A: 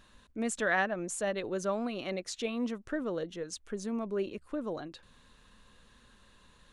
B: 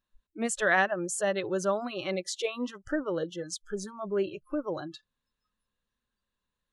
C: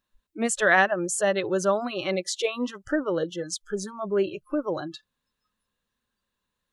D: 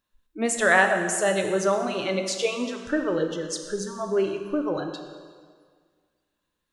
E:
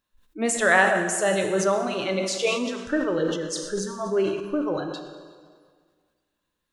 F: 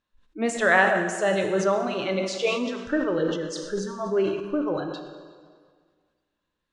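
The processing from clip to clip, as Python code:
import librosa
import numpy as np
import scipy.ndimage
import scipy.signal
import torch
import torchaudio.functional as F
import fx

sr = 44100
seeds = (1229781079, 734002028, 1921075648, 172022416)

y1 = fx.noise_reduce_blind(x, sr, reduce_db=30)
y1 = y1 * librosa.db_to_amplitude(4.5)
y2 = fx.low_shelf(y1, sr, hz=62.0, db=-8.0)
y2 = y2 * librosa.db_to_amplitude(5.0)
y3 = fx.rev_plate(y2, sr, seeds[0], rt60_s=1.8, hf_ratio=0.85, predelay_ms=0, drr_db=4.5)
y4 = fx.sustainer(y3, sr, db_per_s=55.0)
y5 = fx.air_absorb(y4, sr, metres=92.0)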